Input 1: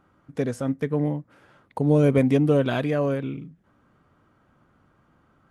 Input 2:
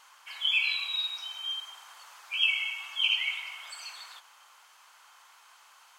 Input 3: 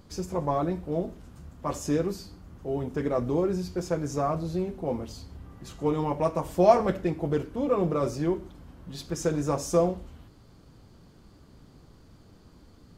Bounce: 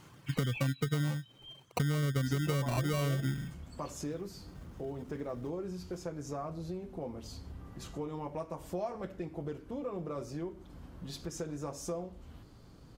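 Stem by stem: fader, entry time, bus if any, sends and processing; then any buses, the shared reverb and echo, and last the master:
+2.0 dB, 0.00 s, bus A, no send, bell 130 Hz +15 dB 0.64 oct; sample-and-hold 26×
-4.0 dB, 0.00 s, bus A, no send, auto duck -12 dB, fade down 1.50 s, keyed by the first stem
-1.5 dB, 2.15 s, no bus, no send, compressor 3:1, threshold -38 dBFS, peak gain reduction 18.5 dB
bus A: 0.0 dB, reverb removal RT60 0.88 s; compressor 4:1, threshold -25 dBFS, peak gain reduction 14.5 dB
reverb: off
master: compressor, threshold -28 dBFS, peak gain reduction 7.5 dB

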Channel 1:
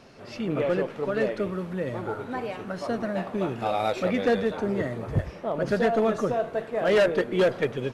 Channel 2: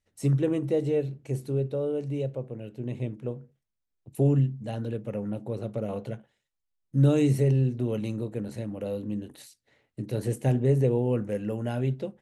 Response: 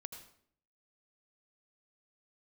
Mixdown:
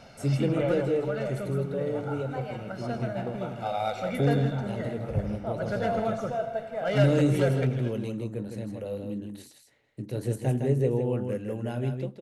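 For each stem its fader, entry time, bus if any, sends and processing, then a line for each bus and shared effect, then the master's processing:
-1.0 dB, 0.00 s, send -7 dB, echo send -17 dB, comb 1.4 ms, depth 62%; auto duck -12 dB, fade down 1.25 s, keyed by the second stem
-3.0 dB, 0.00 s, send -18 dB, echo send -5.5 dB, dry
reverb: on, RT60 0.60 s, pre-delay 73 ms
echo: echo 0.16 s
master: dry

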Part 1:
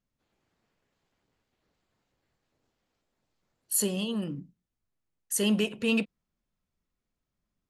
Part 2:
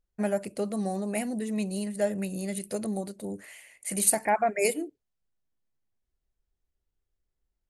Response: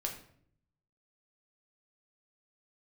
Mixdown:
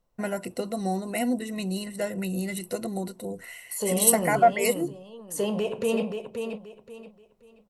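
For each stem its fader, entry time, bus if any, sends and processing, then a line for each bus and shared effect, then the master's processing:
-2.5 dB, 0.00 s, send -5 dB, echo send -3 dB, low shelf 190 Hz +5.5 dB; limiter -25 dBFS, peak gain reduction 11 dB; band shelf 690 Hz +13 dB
+2.0 dB, 0.00 s, no send, no echo send, ripple EQ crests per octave 2, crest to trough 13 dB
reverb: on, RT60 0.60 s, pre-delay 6 ms
echo: feedback echo 0.529 s, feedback 27%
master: dry

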